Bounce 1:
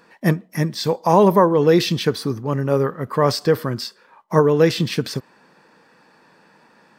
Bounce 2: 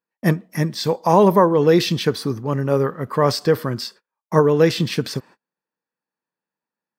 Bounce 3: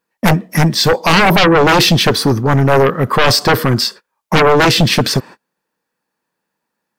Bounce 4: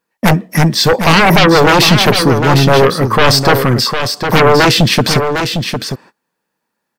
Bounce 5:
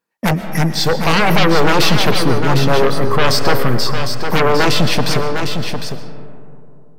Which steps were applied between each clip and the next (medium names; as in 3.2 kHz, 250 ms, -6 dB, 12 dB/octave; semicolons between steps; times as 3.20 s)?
gate -41 dBFS, range -37 dB
sine folder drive 15 dB, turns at -1 dBFS; trim -5 dB
delay 755 ms -7 dB; trim +1.5 dB
reverberation RT60 2.8 s, pre-delay 81 ms, DRR 9.5 dB; trim -6 dB